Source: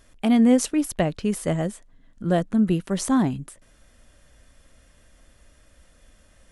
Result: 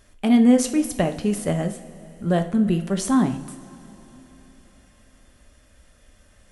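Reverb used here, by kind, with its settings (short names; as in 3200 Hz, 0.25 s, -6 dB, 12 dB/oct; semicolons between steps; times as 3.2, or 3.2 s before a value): two-slope reverb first 0.43 s, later 4.1 s, from -18 dB, DRR 6 dB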